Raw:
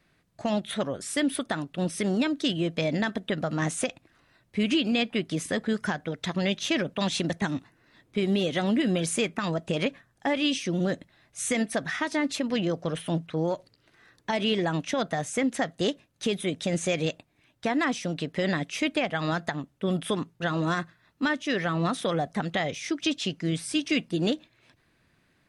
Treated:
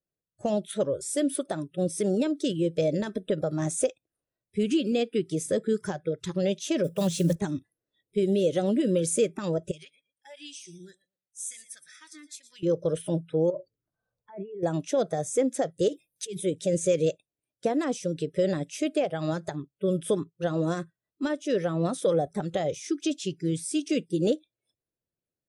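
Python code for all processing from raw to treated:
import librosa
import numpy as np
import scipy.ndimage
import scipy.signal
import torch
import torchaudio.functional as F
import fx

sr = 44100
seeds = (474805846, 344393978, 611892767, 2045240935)

y = fx.chain(x, sr, fx.block_float(bits=5),
    fx.peak_eq(hz=170.0, db=10.5, octaves=0.24), at=(6.84, 7.36))
y = fx.chain(y, sr, fx.tone_stack(knobs='5-5-5'),
    fx.echo_feedback(ms=117, feedback_pct=27, wet_db=-13.0), at=(9.71, 12.63))
y = fx.chain(y, sr, fx.env_phaser(low_hz=290.0, high_hz=3700.0, full_db=-29.5),
    fx.over_compress(threshold_db=-36.0, ratio=-1.0),
    fx.spacing_loss(db_at_10k=24), at=(13.5, 14.63))
y = fx.chain(y, sr, fx.peak_eq(hz=1400.0, db=-6.5, octaves=0.44),
    fx.comb(ms=6.1, depth=0.43),
    fx.over_compress(threshold_db=-34.0, ratio=-1.0), at=(15.88, 16.4))
y = fx.noise_reduce_blind(y, sr, reduce_db=26)
y = fx.graphic_eq(y, sr, hz=(250, 500, 1000, 2000, 4000, 8000), db=(-3, 9, -7, -11, -6, 4))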